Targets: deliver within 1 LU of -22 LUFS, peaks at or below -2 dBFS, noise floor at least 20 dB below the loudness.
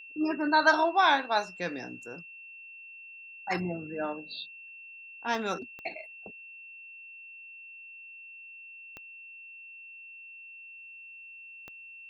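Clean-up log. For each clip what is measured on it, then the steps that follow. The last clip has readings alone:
clicks 4; steady tone 2700 Hz; tone level -45 dBFS; loudness -29.0 LUFS; peak -10.0 dBFS; loudness target -22.0 LUFS
-> de-click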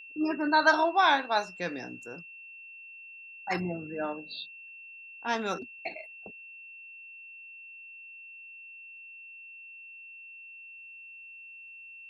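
clicks 0; steady tone 2700 Hz; tone level -45 dBFS
-> notch 2700 Hz, Q 30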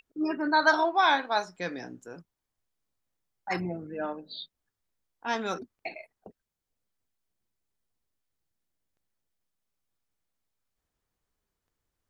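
steady tone none; loudness -28.0 LUFS; peak -10.0 dBFS; loudness target -22.0 LUFS
-> gain +6 dB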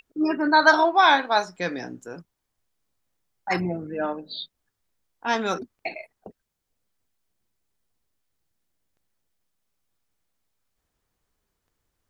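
loudness -22.0 LUFS; peak -4.0 dBFS; noise floor -80 dBFS

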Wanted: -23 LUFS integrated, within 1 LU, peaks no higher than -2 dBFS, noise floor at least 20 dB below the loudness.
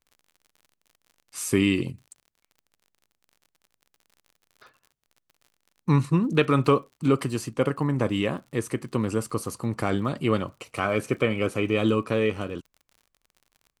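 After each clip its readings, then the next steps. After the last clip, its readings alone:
ticks 49/s; loudness -25.5 LUFS; peak -7.0 dBFS; loudness target -23.0 LUFS
-> de-click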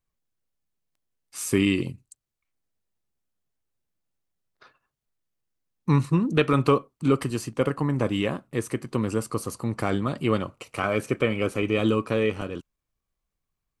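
ticks 0.072/s; loudness -25.5 LUFS; peak -7.0 dBFS; loudness target -23.0 LUFS
-> gain +2.5 dB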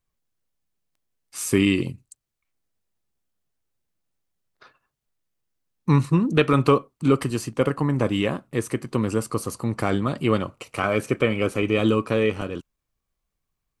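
loudness -23.0 LUFS; peak -4.5 dBFS; noise floor -82 dBFS

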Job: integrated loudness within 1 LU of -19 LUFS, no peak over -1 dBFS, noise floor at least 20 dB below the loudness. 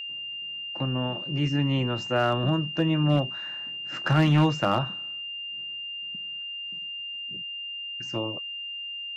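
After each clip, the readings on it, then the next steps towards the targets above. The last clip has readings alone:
clipped 0.3%; flat tops at -14.5 dBFS; steady tone 2800 Hz; tone level -33 dBFS; loudness -27.5 LUFS; peak -14.5 dBFS; loudness target -19.0 LUFS
-> clip repair -14.5 dBFS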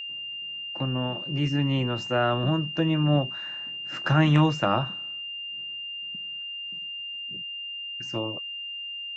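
clipped 0.0%; steady tone 2800 Hz; tone level -33 dBFS
-> notch 2800 Hz, Q 30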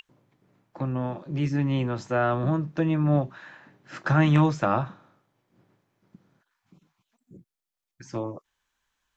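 steady tone none; loudness -26.0 LUFS; peak -6.0 dBFS; loudness target -19.0 LUFS
-> gain +7 dB; limiter -1 dBFS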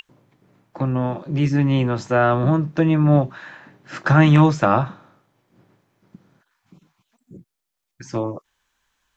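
loudness -19.0 LUFS; peak -1.0 dBFS; noise floor -80 dBFS

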